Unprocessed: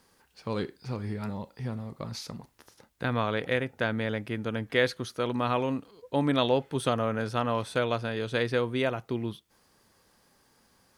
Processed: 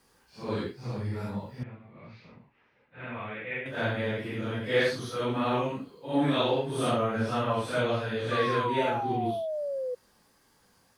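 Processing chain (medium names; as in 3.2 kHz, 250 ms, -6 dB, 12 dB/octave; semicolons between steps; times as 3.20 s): phase randomisation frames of 200 ms; 1.63–3.66 s: four-pole ladder low-pass 2.7 kHz, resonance 60%; 8.31–9.95 s: painted sound fall 490–1200 Hz -32 dBFS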